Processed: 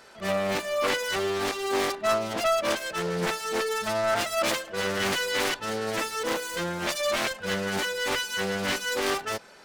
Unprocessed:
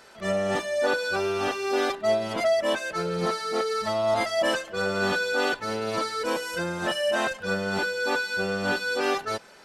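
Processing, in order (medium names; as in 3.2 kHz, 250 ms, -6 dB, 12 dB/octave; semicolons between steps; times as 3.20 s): self-modulated delay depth 0.48 ms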